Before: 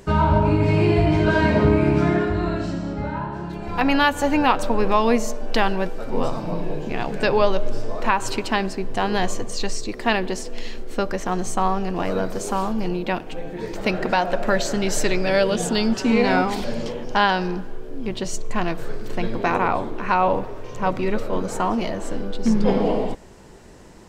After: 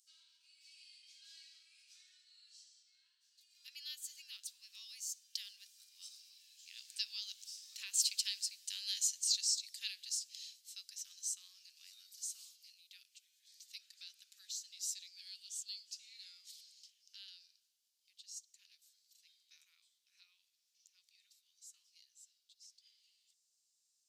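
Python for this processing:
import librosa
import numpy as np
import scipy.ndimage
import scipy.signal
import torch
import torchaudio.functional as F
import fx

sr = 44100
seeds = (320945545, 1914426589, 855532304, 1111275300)

y = fx.doppler_pass(x, sr, speed_mps=12, closest_m=14.0, pass_at_s=8.53)
y = scipy.signal.sosfilt(scipy.signal.cheby2(4, 80, 750.0, 'highpass', fs=sr, output='sos'), y)
y = F.gain(torch.from_numpy(y), 2.5).numpy()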